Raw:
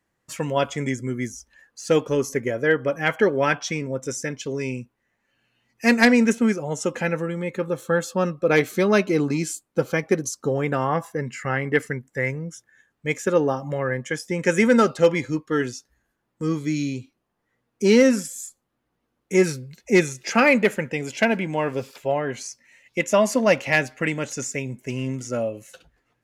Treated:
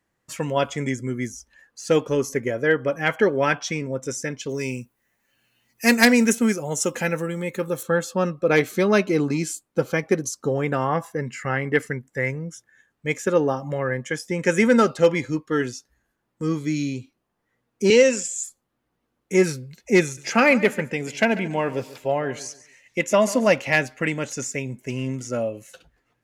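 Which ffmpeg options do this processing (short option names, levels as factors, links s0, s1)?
-filter_complex "[0:a]asettb=1/sr,asplit=3[s0][s1][s2];[s0]atrim=end=4.494[s3];[s1]atrim=start=4.49:end=7.83,asetpts=PTS-STARTPTS,afade=t=in:d=0.004:c=qsin,afade=t=out:st=3.336:d=0.004:c=qsin,aemphasis=mode=production:type=50fm[s4];[s2]atrim=start=7.826[s5];[s3][s4]acrossfade=d=0.004:c1=hsin:c2=qsin[s6];[s6][s5]acrossfade=d=0.004:c1=qsin:c2=hsin,asettb=1/sr,asplit=3[s7][s8][s9];[s7]atrim=end=17.904[s10];[s8]atrim=start=17.9:end=18.44,asetpts=PTS-STARTPTS,afade=t=in:d=0.004:c=qsin,afade=t=out:st=0.536:d=0.004:c=qsin,highpass=290,equalizer=f=290:t=q:w=4:g=-8,equalizer=f=480:t=q:w=4:g=5,equalizer=f=750:t=q:w=4:g=-4,equalizer=f=1300:t=q:w=4:g=-7,equalizer=f=2700:t=q:w=4:g=8,equalizer=f=7200:t=q:w=4:g=10,lowpass=f=8700:w=0.5412,lowpass=f=8700:w=1.3066[s11];[s9]atrim=start=18.436[s12];[s10][s11]acrossfade=d=0.004:c1=hsin:c2=qsin[s13];[s13][s12]acrossfade=d=0.004:c1=qsin:c2=hsin,asettb=1/sr,asplit=3[s14][s15][s16];[s14]atrim=end=20.034[s17];[s15]atrim=start=20.03:end=23.5,asetpts=PTS-STARTPTS,afade=t=in:d=0.004:c=qsin,afade=t=out:st=3.466:d=0.004:c=qsin,aecho=1:1:141|282|423:0.141|0.0424|0.0127,atrim=end_sample=153027[s18];[s16]atrim=start=23.496[s19];[s17][s18]acrossfade=d=0.004:c1=hsin:c2=qsin[s20];[s20][s19]acrossfade=d=0.004:c1=qsin:c2=hsin"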